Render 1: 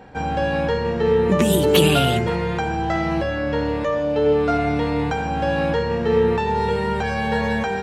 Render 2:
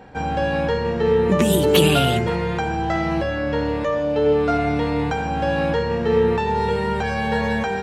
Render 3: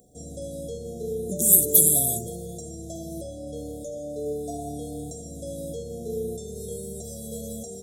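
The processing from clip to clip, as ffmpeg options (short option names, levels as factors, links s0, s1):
-af anull
-af "afftfilt=real='re*(1-between(b*sr/4096,750,3300))':imag='im*(1-between(b*sr/4096,750,3300))':win_size=4096:overlap=0.75,aexciter=amount=13.4:drive=9.6:freq=6900,volume=0.224"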